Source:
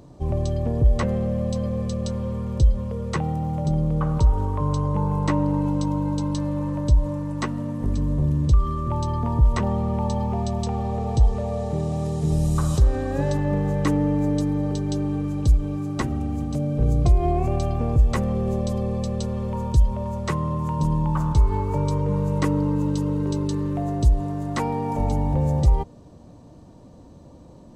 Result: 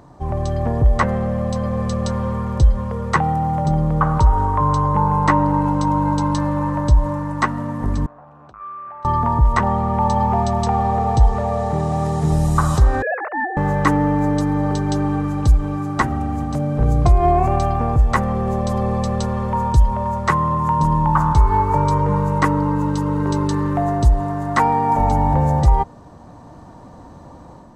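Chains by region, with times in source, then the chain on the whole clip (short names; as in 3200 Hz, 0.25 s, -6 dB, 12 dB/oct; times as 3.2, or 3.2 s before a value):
8.06–9.05 vowel filter a + compressor 5:1, threshold -44 dBFS + core saturation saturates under 520 Hz
13.02–13.57 sine-wave speech + HPF 900 Hz 6 dB/oct + negative-ratio compressor -32 dBFS, ratio -0.5
whole clip: band shelf 1200 Hz +10 dB; AGC gain up to 5 dB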